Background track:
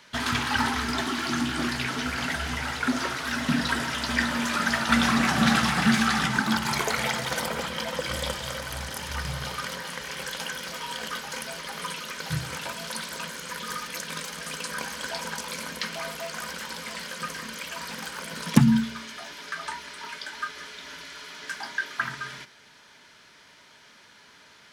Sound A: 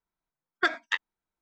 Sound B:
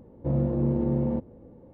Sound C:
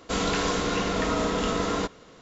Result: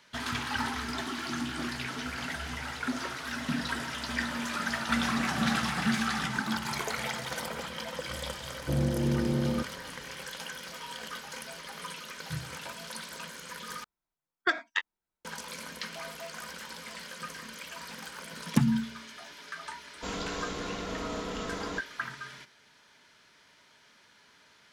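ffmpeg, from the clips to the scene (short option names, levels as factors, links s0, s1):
-filter_complex "[0:a]volume=0.447[s0];[2:a]aeval=exprs='val(0)*gte(abs(val(0)),0.002)':c=same[s1];[s0]asplit=2[s2][s3];[s2]atrim=end=13.844[s4];[1:a]atrim=end=1.41,asetpts=PTS-STARTPTS,volume=0.794[s5];[s3]atrim=start=15.246[s6];[s1]atrim=end=1.73,asetpts=PTS-STARTPTS,volume=0.708,afade=t=in:d=0.004:c=hsin,afade=t=out:st=1.726:d=0.004:c=hsin,adelay=8430[s7];[3:a]atrim=end=2.21,asetpts=PTS-STARTPTS,volume=0.316,afade=t=in:d=0.004:c=hsin,afade=t=out:st=2.206:d=0.004:c=hsin,adelay=19930[s8];[s4][s5]acrossfade=d=0.004:c1=hsin:c2=hsin[s9];[s9][s6]acrossfade=d=0.004:c1=hsin:c2=hsin[s10];[s10][s7][s8]amix=inputs=3:normalize=0"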